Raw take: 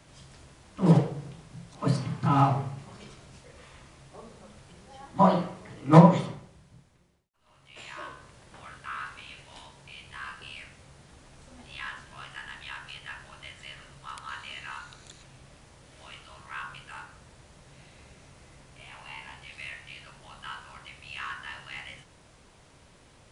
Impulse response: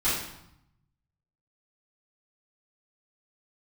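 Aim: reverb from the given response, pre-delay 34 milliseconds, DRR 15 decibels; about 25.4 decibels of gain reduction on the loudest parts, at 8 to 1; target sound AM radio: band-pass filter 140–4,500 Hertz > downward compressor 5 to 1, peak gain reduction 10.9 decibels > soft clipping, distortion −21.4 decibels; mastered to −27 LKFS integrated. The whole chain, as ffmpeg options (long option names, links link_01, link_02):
-filter_complex "[0:a]acompressor=threshold=-36dB:ratio=8,asplit=2[link_01][link_02];[1:a]atrim=start_sample=2205,adelay=34[link_03];[link_02][link_03]afir=irnorm=-1:irlink=0,volume=-27dB[link_04];[link_01][link_04]amix=inputs=2:normalize=0,highpass=140,lowpass=4500,acompressor=threshold=-44dB:ratio=5,asoftclip=threshold=-37.5dB,volume=23dB"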